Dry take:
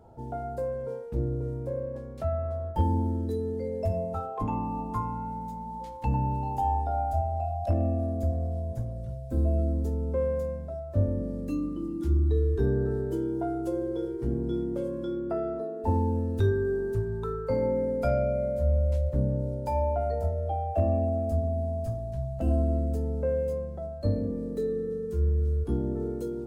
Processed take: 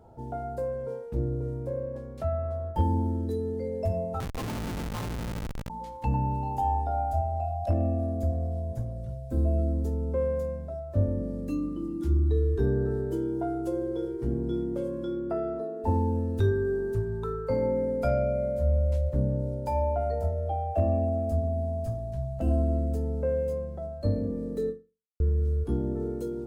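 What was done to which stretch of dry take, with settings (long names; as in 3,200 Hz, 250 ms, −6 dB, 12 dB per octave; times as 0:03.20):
0:04.20–0:05.70: comparator with hysteresis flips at −30.5 dBFS
0:24.69–0:25.20: fade out exponential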